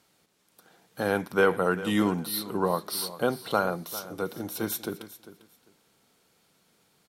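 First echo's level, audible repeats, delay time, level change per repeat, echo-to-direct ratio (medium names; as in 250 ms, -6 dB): -15.5 dB, 2, 398 ms, -14.5 dB, -15.5 dB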